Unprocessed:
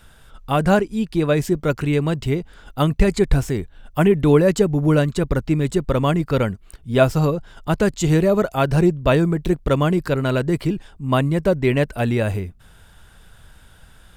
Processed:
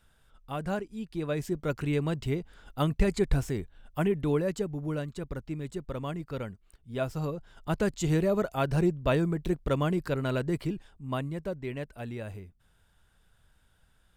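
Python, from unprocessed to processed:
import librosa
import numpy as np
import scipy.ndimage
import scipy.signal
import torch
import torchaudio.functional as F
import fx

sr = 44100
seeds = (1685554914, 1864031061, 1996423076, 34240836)

y = fx.gain(x, sr, db=fx.line((0.9, -16.0), (1.89, -9.0), (3.6, -9.0), (4.93, -16.5), (6.99, -16.5), (7.73, -9.5), (10.55, -9.5), (11.67, -18.0)))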